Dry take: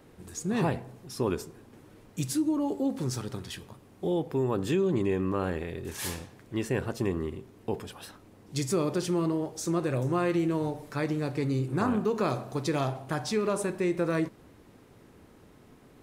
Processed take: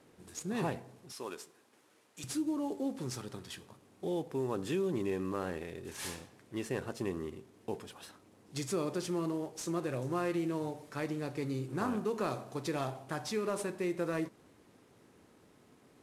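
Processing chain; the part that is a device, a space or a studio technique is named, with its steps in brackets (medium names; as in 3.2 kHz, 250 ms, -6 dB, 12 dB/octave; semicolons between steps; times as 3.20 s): early wireless headset (high-pass 160 Hz 6 dB/octave; CVSD coder 64 kbps); 1.12–2.24 s: high-pass 900 Hz 6 dB/octave; trim -5.5 dB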